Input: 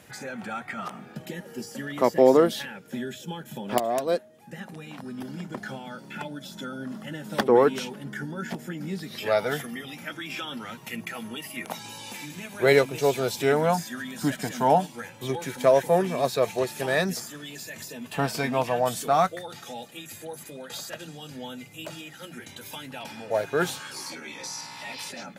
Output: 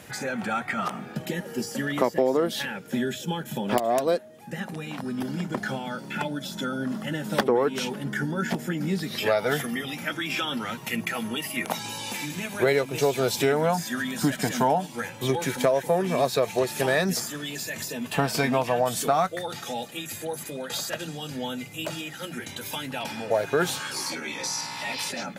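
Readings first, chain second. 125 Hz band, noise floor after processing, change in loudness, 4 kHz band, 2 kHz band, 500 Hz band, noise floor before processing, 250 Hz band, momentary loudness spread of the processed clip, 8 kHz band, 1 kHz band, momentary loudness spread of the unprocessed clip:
+2.5 dB, -42 dBFS, -0.5 dB, +4.5 dB, +2.5 dB, -1.0 dB, -47 dBFS, +2.0 dB, 10 LU, +4.5 dB, 0.0 dB, 18 LU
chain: compressor 6:1, threshold -25 dBFS, peak gain reduction 13 dB; gain +6 dB

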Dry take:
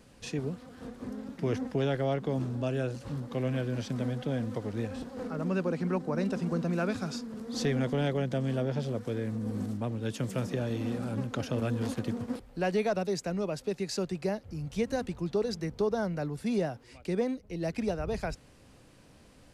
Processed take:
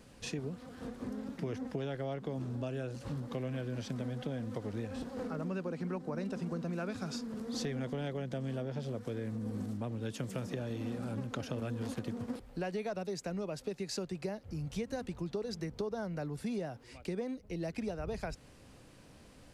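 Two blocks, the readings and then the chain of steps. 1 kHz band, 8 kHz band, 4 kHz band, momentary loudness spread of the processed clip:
-7.0 dB, -4.0 dB, -4.5 dB, 4 LU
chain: compressor 4:1, threshold -35 dBFS, peak gain reduction 10 dB

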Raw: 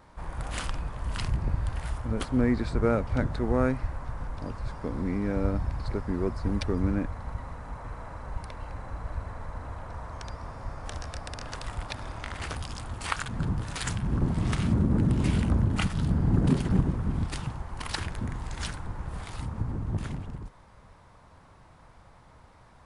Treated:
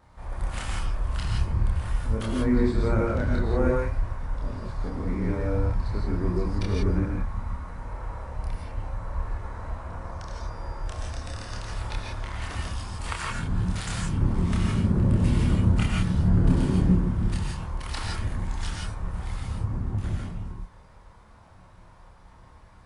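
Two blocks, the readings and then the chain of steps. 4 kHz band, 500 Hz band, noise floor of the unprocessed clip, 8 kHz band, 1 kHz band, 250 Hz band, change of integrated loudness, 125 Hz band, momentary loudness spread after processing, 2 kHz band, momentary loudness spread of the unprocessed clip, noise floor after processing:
+0.5 dB, +1.5 dB, -55 dBFS, +0.5 dB, +1.0 dB, +1.5 dB, +2.5 dB, +3.0 dB, 14 LU, +1.0 dB, 15 LU, -51 dBFS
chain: chorus voices 4, 0.39 Hz, delay 28 ms, depth 1.2 ms; non-linear reverb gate 0.19 s rising, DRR -1.5 dB

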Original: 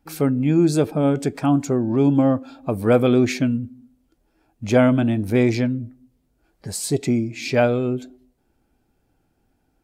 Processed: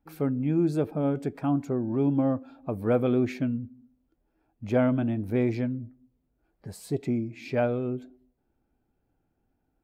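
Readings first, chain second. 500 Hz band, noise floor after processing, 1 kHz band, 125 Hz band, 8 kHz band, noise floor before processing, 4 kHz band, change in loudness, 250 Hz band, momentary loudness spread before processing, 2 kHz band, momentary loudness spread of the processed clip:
-8.0 dB, -76 dBFS, -8.5 dB, -7.5 dB, under -15 dB, -68 dBFS, -16.0 dB, -7.5 dB, -7.5 dB, 12 LU, -11.0 dB, 13 LU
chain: bell 7000 Hz -13 dB 2.2 oct; gain -7.5 dB

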